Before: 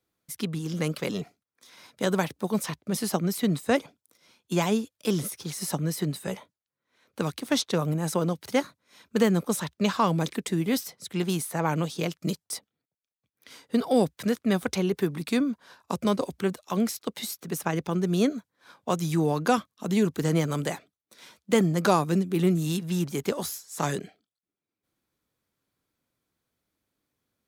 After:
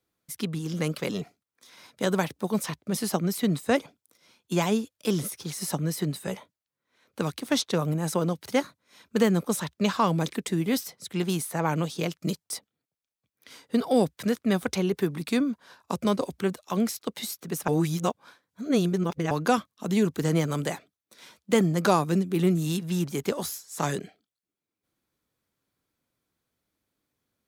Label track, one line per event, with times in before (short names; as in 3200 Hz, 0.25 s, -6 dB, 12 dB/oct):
17.680000	19.310000	reverse